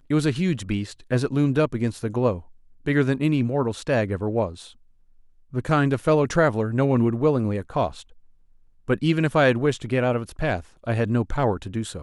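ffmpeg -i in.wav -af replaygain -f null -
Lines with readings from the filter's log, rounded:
track_gain = +4.1 dB
track_peak = 0.310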